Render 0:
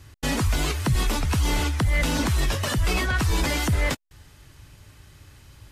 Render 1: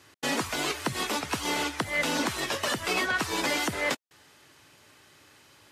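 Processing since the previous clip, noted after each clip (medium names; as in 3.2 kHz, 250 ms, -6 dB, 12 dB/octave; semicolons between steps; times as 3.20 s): high-pass 310 Hz 12 dB/octave; treble shelf 9.1 kHz -6 dB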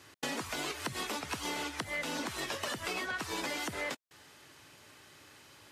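compression, threshold -34 dBFS, peak gain reduction 10.5 dB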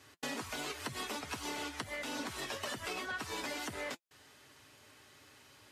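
comb of notches 170 Hz; trim -2 dB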